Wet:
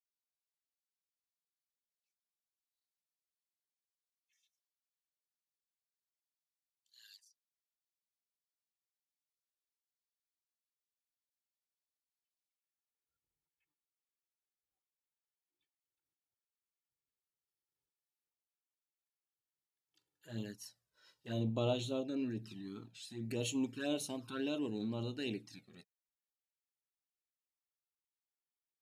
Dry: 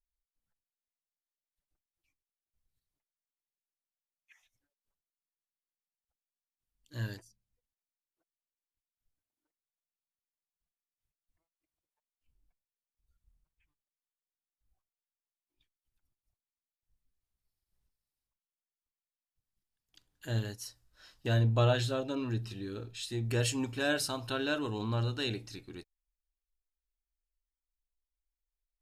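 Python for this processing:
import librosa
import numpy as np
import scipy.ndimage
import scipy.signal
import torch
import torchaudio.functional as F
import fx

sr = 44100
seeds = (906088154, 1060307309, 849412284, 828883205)

y = fx.transient(x, sr, attack_db=-8, sustain_db=-2)
y = fx.env_flanger(y, sr, rest_ms=2.3, full_db=-30.0)
y = fx.filter_sweep_highpass(y, sr, from_hz=4000.0, to_hz=200.0, start_s=12.48, end_s=13.12, q=1.8)
y = F.gain(torch.from_numpy(y), -4.0).numpy()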